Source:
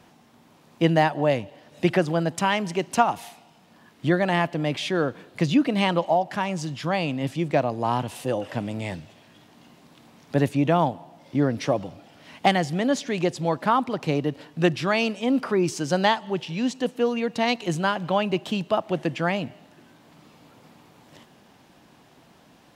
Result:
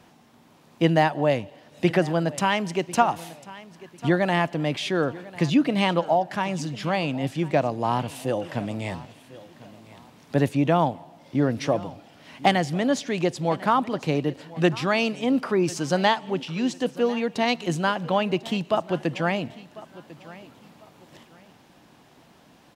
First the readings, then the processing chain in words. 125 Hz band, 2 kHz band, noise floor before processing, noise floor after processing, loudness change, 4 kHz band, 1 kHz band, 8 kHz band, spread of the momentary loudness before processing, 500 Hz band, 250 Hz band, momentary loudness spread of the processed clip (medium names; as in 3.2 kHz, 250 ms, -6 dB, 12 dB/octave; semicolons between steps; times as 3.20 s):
0.0 dB, 0.0 dB, -55 dBFS, -55 dBFS, 0.0 dB, 0.0 dB, 0.0 dB, 0.0 dB, 7 LU, 0.0 dB, 0.0 dB, 10 LU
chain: feedback delay 1047 ms, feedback 29%, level -19 dB